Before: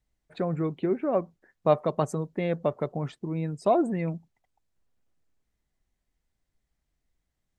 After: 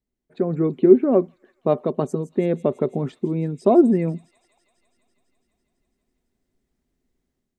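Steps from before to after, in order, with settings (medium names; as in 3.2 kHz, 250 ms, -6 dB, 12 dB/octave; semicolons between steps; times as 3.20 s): level rider gain up to 10.5 dB; small resonant body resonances 250/370 Hz, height 16 dB, ringing for 45 ms; on a send: feedback echo behind a high-pass 166 ms, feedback 78%, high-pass 4.5 kHz, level -10 dB; on the sum: trim -9.5 dB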